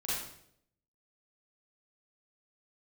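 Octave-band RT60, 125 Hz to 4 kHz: 0.85, 0.80, 0.80, 0.60, 0.60, 0.60 s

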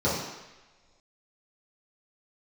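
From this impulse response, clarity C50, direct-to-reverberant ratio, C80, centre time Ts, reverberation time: 1.5 dB, -10.5 dB, 4.5 dB, 62 ms, not exponential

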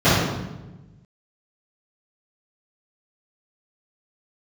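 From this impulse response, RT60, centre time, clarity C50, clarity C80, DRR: 1.1 s, 88 ms, -2.0 dB, 1.5 dB, -17.5 dB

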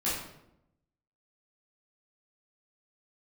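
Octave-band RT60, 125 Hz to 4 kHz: 1.1, 1.0, 0.90, 0.75, 0.65, 0.55 s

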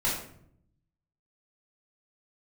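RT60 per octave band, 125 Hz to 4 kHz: 1.3, 1.0, 0.75, 0.55, 0.50, 0.40 s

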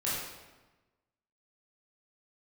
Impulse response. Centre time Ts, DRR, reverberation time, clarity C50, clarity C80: 82 ms, -9.0 dB, 1.2 s, -1.0 dB, 2.0 dB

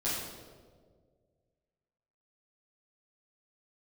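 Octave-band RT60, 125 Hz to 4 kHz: 2.4, 2.0, 2.1, 1.4, 1.0, 1.0 s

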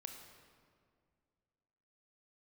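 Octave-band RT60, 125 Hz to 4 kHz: 2.6, 2.5, 2.3, 1.9, 1.6, 1.3 s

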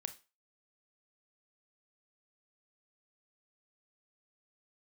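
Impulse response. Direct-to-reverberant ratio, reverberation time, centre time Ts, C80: 9.0 dB, 0.30 s, 6 ms, 21.5 dB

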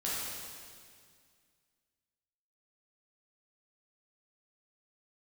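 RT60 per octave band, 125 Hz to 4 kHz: 2.4, 2.4, 2.1, 2.0, 2.0, 2.0 s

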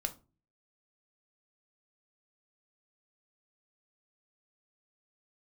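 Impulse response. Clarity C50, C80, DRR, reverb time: 17.0 dB, 23.5 dB, 7.5 dB, 0.35 s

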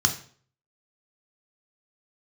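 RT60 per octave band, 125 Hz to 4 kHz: 0.55, 0.50, 0.50, 0.45, 0.45, 0.40 s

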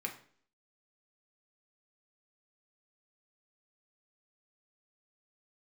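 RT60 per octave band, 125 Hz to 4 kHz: 0.50, 0.60, 0.55, 0.50, 0.50, 0.50 s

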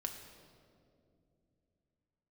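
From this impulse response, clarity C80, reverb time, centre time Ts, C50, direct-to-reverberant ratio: 7.5 dB, 2.5 s, 39 ms, 6.5 dB, 3.0 dB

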